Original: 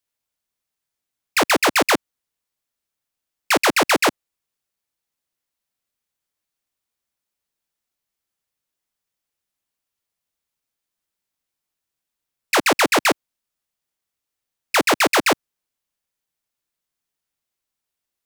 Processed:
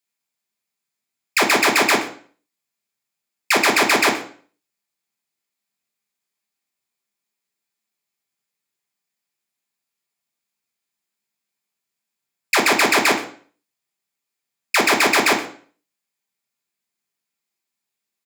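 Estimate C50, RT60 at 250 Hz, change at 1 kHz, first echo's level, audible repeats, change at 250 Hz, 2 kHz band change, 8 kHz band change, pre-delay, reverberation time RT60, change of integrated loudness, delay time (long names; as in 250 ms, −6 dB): 9.5 dB, 0.55 s, +0.5 dB, −19.0 dB, 1, −0.5 dB, +3.0 dB, +1.5 dB, 3 ms, 0.50 s, +1.5 dB, 123 ms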